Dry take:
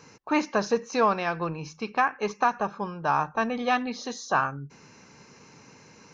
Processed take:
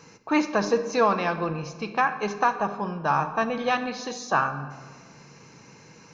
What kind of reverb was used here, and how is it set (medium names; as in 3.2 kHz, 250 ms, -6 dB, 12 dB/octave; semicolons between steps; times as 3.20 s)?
simulated room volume 1900 m³, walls mixed, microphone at 0.69 m; trim +1 dB